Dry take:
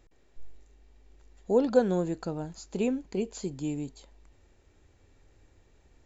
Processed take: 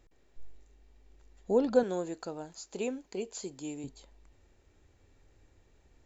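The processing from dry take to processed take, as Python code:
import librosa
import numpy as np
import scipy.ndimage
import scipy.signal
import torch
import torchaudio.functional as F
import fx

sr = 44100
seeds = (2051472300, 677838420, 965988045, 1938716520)

y = fx.bass_treble(x, sr, bass_db=-13, treble_db=4, at=(1.83, 3.84))
y = y * 10.0 ** (-2.5 / 20.0)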